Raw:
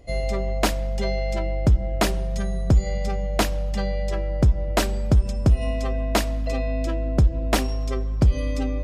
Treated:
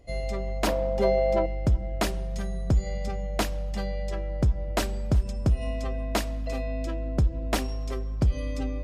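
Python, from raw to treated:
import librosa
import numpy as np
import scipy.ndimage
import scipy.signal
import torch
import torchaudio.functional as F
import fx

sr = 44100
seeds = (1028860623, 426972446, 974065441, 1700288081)

y = fx.graphic_eq(x, sr, hz=(250, 500, 1000, 8000), db=(6, 11, 9, -7), at=(0.67, 1.46))
y = y + 10.0 ** (-22.5 / 20.0) * np.pad(y, (int(372 * sr / 1000.0), 0))[:len(y)]
y = y * librosa.db_to_amplitude(-5.5)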